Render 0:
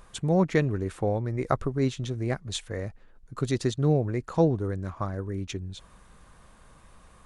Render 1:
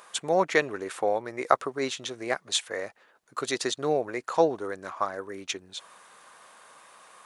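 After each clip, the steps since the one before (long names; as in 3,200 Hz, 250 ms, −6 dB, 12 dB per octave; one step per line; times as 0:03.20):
high-pass filter 610 Hz 12 dB per octave
level +7 dB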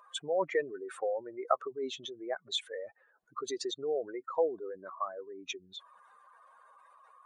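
expanding power law on the bin magnitudes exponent 2.4
level −6.5 dB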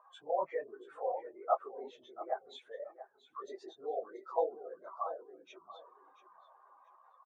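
random phases in long frames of 50 ms
resonant band-pass 790 Hz, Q 2.9
repeating echo 684 ms, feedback 20%, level −14.5 dB
level +4 dB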